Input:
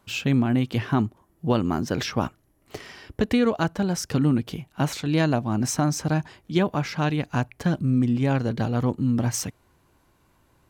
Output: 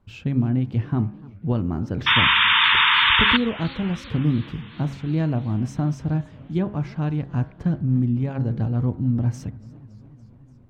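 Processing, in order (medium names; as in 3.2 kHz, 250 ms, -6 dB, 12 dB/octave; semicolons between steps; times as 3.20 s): RIAA curve playback; de-hum 68.62 Hz, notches 29; painted sound noise, 2.06–3.37 s, 880–3700 Hz -9 dBFS; modulated delay 287 ms, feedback 73%, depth 211 cents, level -22.5 dB; trim -8 dB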